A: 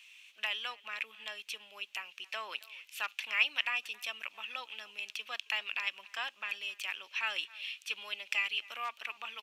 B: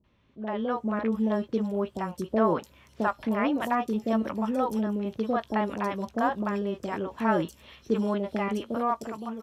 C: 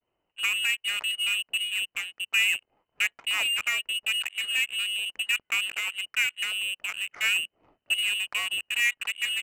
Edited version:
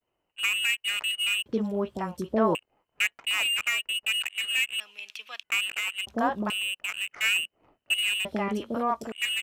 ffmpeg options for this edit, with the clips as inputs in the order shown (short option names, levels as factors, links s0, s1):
-filter_complex "[1:a]asplit=3[s0][s1][s2];[2:a]asplit=5[s3][s4][s5][s6][s7];[s3]atrim=end=1.462[s8];[s0]atrim=start=1.458:end=2.552[s9];[s4]atrim=start=2.548:end=4.802[s10];[0:a]atrim=start=4.798:end=5.432[s11];[s5]atrim=start=5.428:end=6.072[s12];[s1]atrim=start=6.068:end=6.502[s13];[s6]atrim=start=6.498:end=8.252[s14];[s2]atrim=start=8.248:end=9.122[s15];[s7]atrim=start=9.118[s16];[s8][s9]acrossfade=d=0.004:c1=hsin:c2=hsin[s17];[s17][s10]acrossfade=d=0.004:c1=hsin:c2=hsin[s18];[s18][s11]acrossfade=d=0.004:c1=hsin:c2=hsin[s19];[s19][s12]acrossfade=d=0.004:c1=hsin:c2=hsin[s20];[s20][s13]acrossfade=d=0.004:c1=hsin:c2=hsin[s21];[s21][s14]acrossfade=d=0.004:c1=hsin:c2=hsin[s22];[s22][s15]acrossfade=d=0.004:c1=hsin:c2=hsin[s23];[s23][s16]acrossfade=d=0.004:c1=hsin:c2=hsin"